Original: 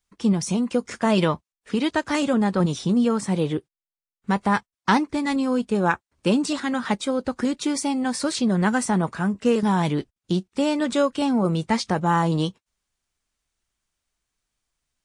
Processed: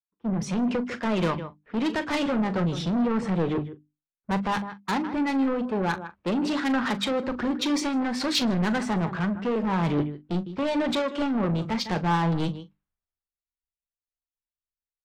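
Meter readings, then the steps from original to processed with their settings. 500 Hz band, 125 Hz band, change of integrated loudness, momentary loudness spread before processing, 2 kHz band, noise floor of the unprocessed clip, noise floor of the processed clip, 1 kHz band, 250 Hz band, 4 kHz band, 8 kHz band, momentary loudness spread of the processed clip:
-4.0 dB, -3.0 dB, -3.5 dB, 5 LU, -3.0 dB, under -85 dBFS, under -85 dBFS, -4.0 dB, -3.5 dB, -0.5 dB, -7.5 dB, 6 LU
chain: low-pass 3.1 kHz 12 dB/octave; level-controlled noise filter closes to 1.5 kHz, open at -20.5 dBFS; hum notches 50/100/150/200/250/300 Hz; level rider gain up to 11.5 dB; delay 156 ms -17.5 dB; compression 6:1, threshold -15 dBFS, peak gain reduction 8 dB; saturation -22 dBFS, distortion -8 dB; doubling 41 ms -13.5 dB; three bands expanded up and down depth 100%

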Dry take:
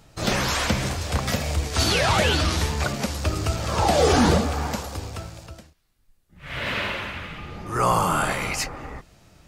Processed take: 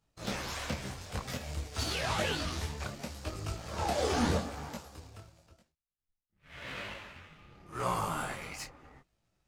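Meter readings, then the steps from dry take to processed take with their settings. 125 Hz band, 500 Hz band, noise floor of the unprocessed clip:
-13.5 dB, -12.5 dB, -61 dBFS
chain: power-law waveshaper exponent 1.4; detune thickener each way 30 cents; trim -5 dB

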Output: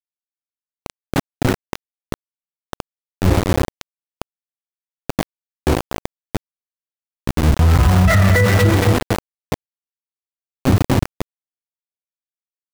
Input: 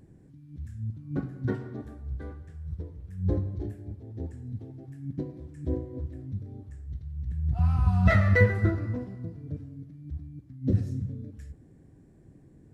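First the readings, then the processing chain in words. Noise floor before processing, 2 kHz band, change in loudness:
-55 dBFS, +10.0 dB, +12.5 dB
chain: tape echo 232 ms, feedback 70%, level -4.5 dB, low-pass 1.2 kHz; small samples zeroed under -25.5 dBFS; loudness maximiser +19.5 dB; trim -4.5 dB

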